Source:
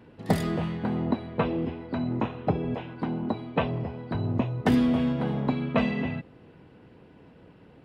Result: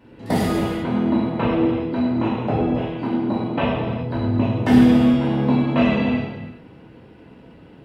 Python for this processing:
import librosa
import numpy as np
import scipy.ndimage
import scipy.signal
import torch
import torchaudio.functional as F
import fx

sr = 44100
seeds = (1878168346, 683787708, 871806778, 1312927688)

y = fx.rev_gated(x, sr, seeds[0], gate_ms=440, shape='falling', drr_db=-7.5)
y = y * librosa.db_to_amplitude(-1.0)